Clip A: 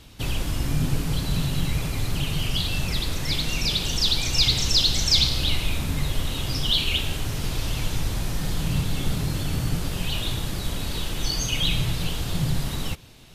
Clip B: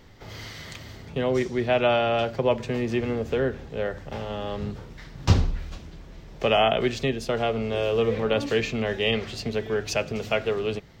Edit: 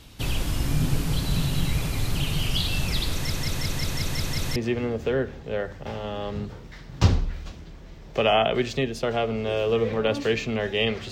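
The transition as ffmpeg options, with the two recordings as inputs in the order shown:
ffmpeg -i cue0.wav -i cue1.wav -filter_complex "[0:a]apad=whole_dur=11.11,atrim=end=11.11,asplit=8[link_01][link_02][link_03][link_04][link_05][link_06][link_07][link_08];[link_01]atrim=end=3.302[link_09];[link_02]atrim=start=3.118:end=3.302[link_10];[link_03]atrim=start=3.118:end=3.302[link_11];[link_04]atrim=start=3.118:end=3.302[link_12];[link_05]atrim=start=3.118:end=3.302[link_13];[link_06]atrim=start=3.118:end=3.302[link_14];[link_07]atrim=start=3.118:end=3.302[link_15];[link_08]atrim=start=3.118:end=3.302[link_16];[1:a]atrim=start=2.818:end=9.37[link_17];[link_09][link_10]acrossfade=duration=0.004:curve1=hsin:curve2=hsin[link_18];[link_18][link_11]acrossfade=duration=0.004:curve1=hsin:curve2=hsin[link_19];[link_19][link_12]acrossfade=duration=0.004:curve1=hsin:curve2=hsin[link_20];[link_20][link_13]acrossfade=duration=0.004:curve1=hsin:curve2=hsin[link_21];[link_21][link_14]acrossfade=duration=0.004:curve1=hsin:curve2=hsin[link_22];[link_22][link_15]acrossfade=duration=0.004:curve1=hsin:curve2=hsin[link_23];[link_23][link_16]acrossfade=duration=0.004:curve1=hsin:curve2=hsin[link_24];[link_24][link_17]acrossfade=duration=0.004:curve1=hsin:curve2=hsin" out.wav

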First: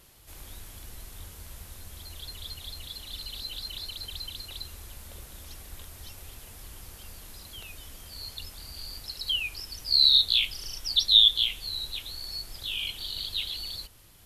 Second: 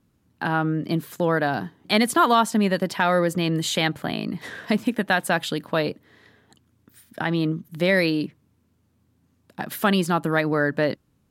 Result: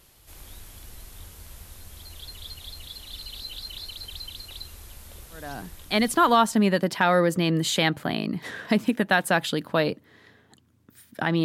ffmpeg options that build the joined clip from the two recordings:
ffmpeg -i cue0.wav -i cue1.wav -filter_complex "[0:a]apad=whole_dur=11.44,atrim=end=11.44,atrim=end=6.72,asetpts=PTS-STARTPTS[link_01];[1:a]atrim=start=1.29:end=7.43,asetpts=PTS-STARTPTS[link_02];[link_01][link_02]acrossfade=duration=1.42:curve1=qsin:curve2=qsin" out.wav

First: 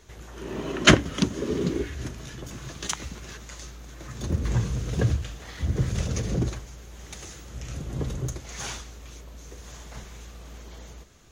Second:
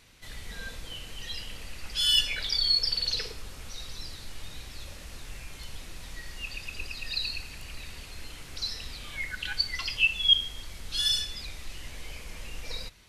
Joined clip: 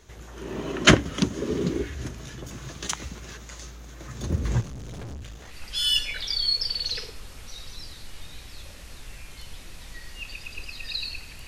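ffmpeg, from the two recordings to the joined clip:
ffmpeg -i cue0.wav -i cue1.wav -filter_complex "[0:a]asplit=3[link_01][link_02][link_03];[link_01]afade=type=out:start_time=4.6:duration=0.02[link_04];[link_02]aeval=exprs='(tanh(63.1*val(0)+0.4)-tanh(0.4))/63.1':channel_layout=same,afade=type=in:start_time=4.6:duration=0.02,afade=type=out:start_time=5.55:duration=0.02[link_05];[link_03]afade=type=in:start_time=5.55:duration=0.02[link_06];[link_04][link_05][link_06]amix=inputs=3:normalize=0,apad=whole_dur=11.47,atrim=end=11.47,atrim=end=5.55,asetpts=PTS-STARTPTS[link_07];[1:a]atrim=start=1.69:end=7.69,asetpts=PTS-STARTPTS[link_08];[link_07][link_08]acrossfade=duration=0.08:curve1=tri:curve2=tri" out.wav

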